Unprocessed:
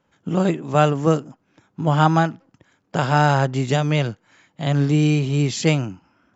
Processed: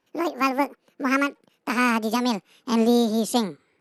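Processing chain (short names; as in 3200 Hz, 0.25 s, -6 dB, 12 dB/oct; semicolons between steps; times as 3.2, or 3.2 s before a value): speed glide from 183% -> 151%; AGC; gain -6 dB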